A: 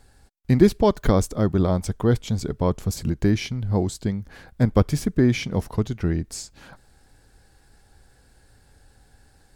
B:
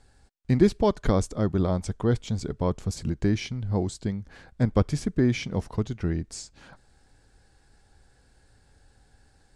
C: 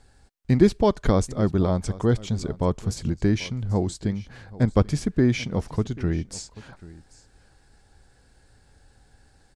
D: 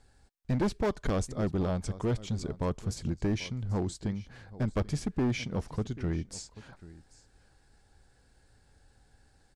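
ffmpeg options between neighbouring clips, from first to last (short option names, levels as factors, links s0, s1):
-af "lowpass=f=9300:w=0.5412,lowpass=f=9300:w=1.3066,volume=0.631"
-af "aecho=1:1:787:0.106,volume=1.33"
-af "asoftclip=type=hard:threshold=0.126,volume=0.501"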